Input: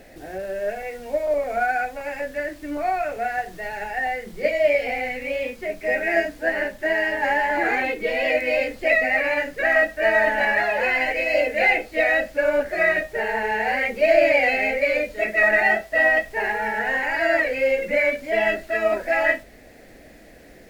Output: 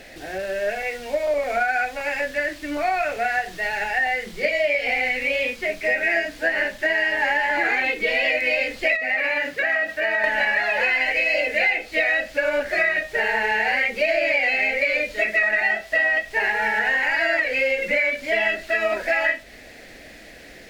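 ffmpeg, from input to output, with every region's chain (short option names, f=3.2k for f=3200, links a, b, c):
-filter_complex "[0:a]asettb=1/sr,asplit=3[a][b][c];[a]atrim=end=8.964[d];[b]atrim=start=8.96:end=10.24,asetpts=PTS-STARTPTS,afade=t=in:d=0.004:c=qsin,afade=t=out:st=1.276:d=0.004:c=qsin,equalizer=f=7.7k:w=0.53:g=-4,acompressor=threshold=-24dB:ratio=3:attack=3.2:release=140:knee=1:detection=peak,highpass=87[e];[c]atrim=start=10.236[f];[d][e]acrossfade=d=0.004:c1=hsin:c2=qsin[g];[g][f]acrossfade=d=0.004:c1=qsin:c2=hsin,equalizer=f=3.4k:t=o:w=2.7:g=11,acompressor=threshold=-18dB:ratio=6"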